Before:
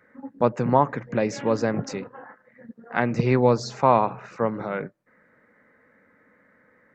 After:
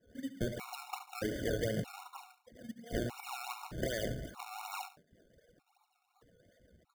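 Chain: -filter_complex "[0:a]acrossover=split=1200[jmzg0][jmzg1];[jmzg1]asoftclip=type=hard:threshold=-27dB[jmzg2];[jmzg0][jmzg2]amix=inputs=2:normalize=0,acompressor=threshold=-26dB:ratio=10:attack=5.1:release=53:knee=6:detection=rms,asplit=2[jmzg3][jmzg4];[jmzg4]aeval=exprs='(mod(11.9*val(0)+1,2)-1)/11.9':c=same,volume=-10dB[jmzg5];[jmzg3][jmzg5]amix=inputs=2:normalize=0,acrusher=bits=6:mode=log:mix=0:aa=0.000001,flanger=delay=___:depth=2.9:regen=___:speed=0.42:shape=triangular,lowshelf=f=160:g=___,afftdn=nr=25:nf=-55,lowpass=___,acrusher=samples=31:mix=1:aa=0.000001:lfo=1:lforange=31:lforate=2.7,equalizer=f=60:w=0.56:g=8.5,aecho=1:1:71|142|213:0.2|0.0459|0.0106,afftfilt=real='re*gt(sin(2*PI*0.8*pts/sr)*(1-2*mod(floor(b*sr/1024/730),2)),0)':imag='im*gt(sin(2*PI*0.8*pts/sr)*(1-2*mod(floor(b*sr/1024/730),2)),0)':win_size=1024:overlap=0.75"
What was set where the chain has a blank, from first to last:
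0.2, -24, -11.5, 4600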